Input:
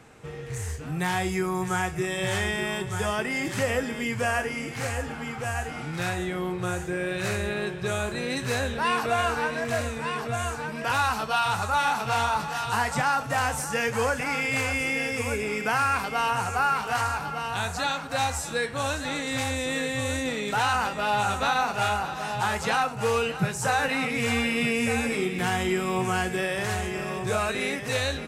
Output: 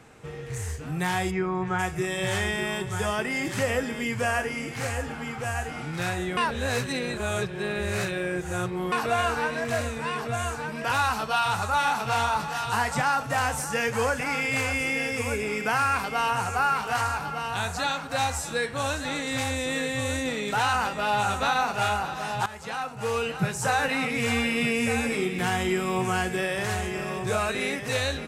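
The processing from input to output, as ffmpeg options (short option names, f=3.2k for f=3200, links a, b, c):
-filter_complex "[0:a]asplit=3[a][b][c];[a]afade=t=out:st=1.3:d=0.02[d];[b]lowpass=2.6k,afade=t=in:st=1.3:d=0.02,afade=t=out:st=1.78:d=0.02[e];[c]afade=t=in:st=1.78:d=0.02[f];[d][e][f]amix=inputs=3:normalize=0,asplit=4[g][h][i][j];[g]atrim=end=6.372[k];[h]atrim=start=6.368:end=8.922,asetpts=PTS-STARTPTS,areverse[l];[i]atrim=start=8.918:end=22.46,asetpts=PTS-STARTPTS,afade=t=out:st=13.538:d=0.004:c=hsin:silence=0.16788[m];[j]atrim=start=22.46,asetpts=PTS-STARTPTS,afade=t=in:d=1.03:silence=0.16788[n];[k][l]acrossfade=d=0.004:c1=hsin:c2=hsin[o];[m][n]concat=n=2:v=0:a=1[p];[o][p]acrossfade=d=0.004:c1=hsin:c2=hsin"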